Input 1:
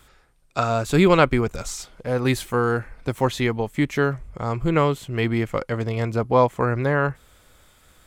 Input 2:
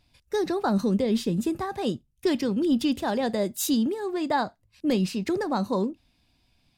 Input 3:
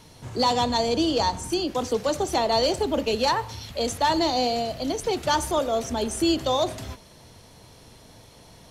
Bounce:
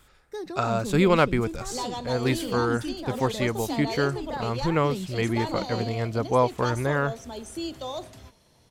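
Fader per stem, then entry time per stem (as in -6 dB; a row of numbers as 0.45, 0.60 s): -4.0, -9.5, -11.0 dB; 0.00, 0.00, 1.35 s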